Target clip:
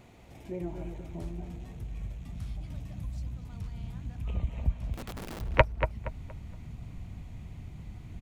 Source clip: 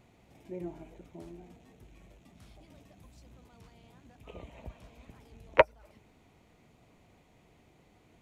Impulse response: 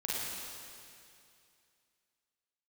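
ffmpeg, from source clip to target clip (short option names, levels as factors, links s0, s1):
-filter_complex "[0:a]asubboost=boost=11.5:cutoff=130,asplit=2[s0][s1];[s1]acompressor=threshold=0.00708:ratio=6,volume=1.26[s2];[s0][s2]amix=inputs=2:normalize=0,asplit=3[s3][s4][s5];[s3]afade=t=out:st=4.93:d=0.02[s6];[s4]aeval=exprs='(mod(59.6*val(0)+1,2)-1)/59.6':c=same,afade=t=in:st=4.93:d=0.02,afade=t=out:st=5.4:d=0.02[s7];[s5]afade=t=in:st=5.4:d=0.02[s8];[s6][s7][s8]amix=inputs=3:normalize=0,asplit=2[s9][s10];[s10]adelay=235,lowpass=f=2600:p=1,volume=0.398,asplit=2[s11][s12];[s12]adelay=235,lowpass=f=2600:p=1,volume=0.32,asplit=2[s13][s14];[s14]adelay=235,lowpass=f=2600:p=1,volume=0.32,asplit=2[s15][s16];[s16]adelay=235,lowpass=f=2600:p=1,volume=0.32[s17];[s9][s11][s13][s15][s17]amix=inputs=5:normalize=0"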